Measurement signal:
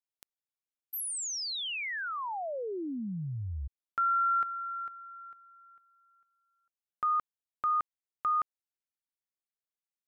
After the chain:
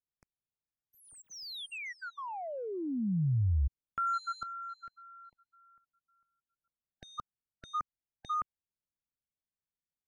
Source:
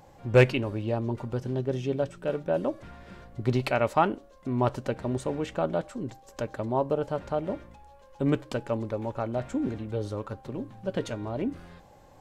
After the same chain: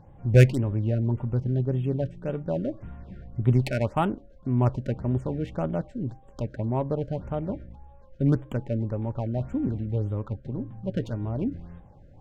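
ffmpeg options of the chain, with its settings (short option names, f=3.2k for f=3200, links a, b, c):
-af "adynamicsmooth=sensitivity=3.5:basefreq=2.2k,bass=f=250:g=12,treble=f=4k:g=7,afftfilt=real='re*(1-between(b*sr/1024,950*pow(5500/950,0.5+0.5*sin(2*PI*1.8*pts/sr))/1.41,950*pow(5500/950,0.5+0.5*sin(2*PI*1.8*pts/sr))*1.41))':imag='im*(1-between(b*sr/1024,950*pow(5500/950,0.5+0.5*sin(2*PI*1.8*pts/sr))/1.41,950*pow(5500/950,0.5+0.5*sin(2*PI*1.8*pts/sr))*1.41))':win_size=1024:overlap=0.75,volume=-3.5dB"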